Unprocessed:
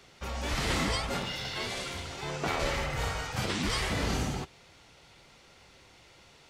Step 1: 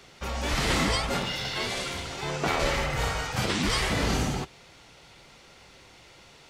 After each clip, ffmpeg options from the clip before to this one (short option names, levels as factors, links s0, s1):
-af "equalizer=f=83:t=o:w=0.38:g=-4.5,volume=1.68"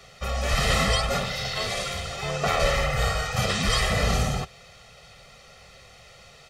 -af "aecho=1:1:1.6:0.93"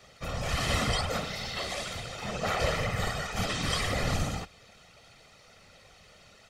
-af "afftfilt=real='hypot(re,im)*cos(2*PI*random(0))':imag='hypot(re,im)*sin(2*PI*random(1))':win_size=512:overlap=0.75"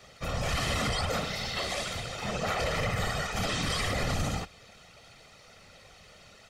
-af "alimiter=limit=0.075:level=0:latency=1:release=28,volume=1.26"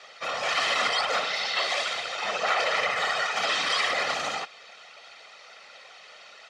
-af "highpass=700,lowpass=4800,volume=2.51"